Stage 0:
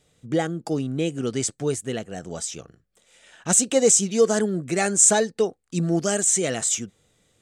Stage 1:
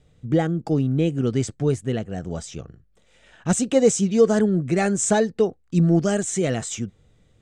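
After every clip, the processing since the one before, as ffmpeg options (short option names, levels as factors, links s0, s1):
-af "aemphasis=mode=reproduction:type=bsi"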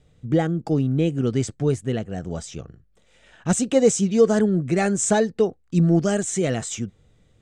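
-af anull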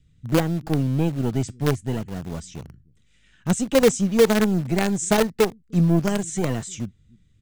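-filter_complex "[0:a]acrossover=split=290|1300[s0][s1][s2];[s0]aecho=1:1:304:0.0708[s3];[s1]acrusher=bits=4:dc=4:mix=0:aa=0.000001[s4];[s2]flanger=delay=0.3:depth=8.4:regen=78:speed=0.34:shape=triangular[s5];[s3][s4][s5]amix=inputs=3:normalize=0"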